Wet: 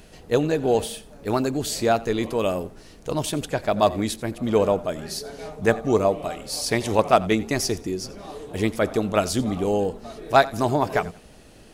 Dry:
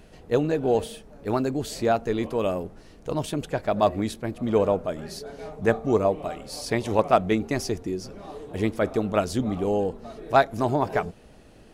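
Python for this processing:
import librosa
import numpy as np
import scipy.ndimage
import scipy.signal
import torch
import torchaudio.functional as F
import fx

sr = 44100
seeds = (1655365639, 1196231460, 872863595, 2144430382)

y = fx.high_shelf(x, sr, hz=2900.0, db=8.0)
y = fx.echo_feedback(y, sr, ms=88, feedback_pct=28, wet_db=-20)
y = y * librosa.db_to_amplitude(1.5)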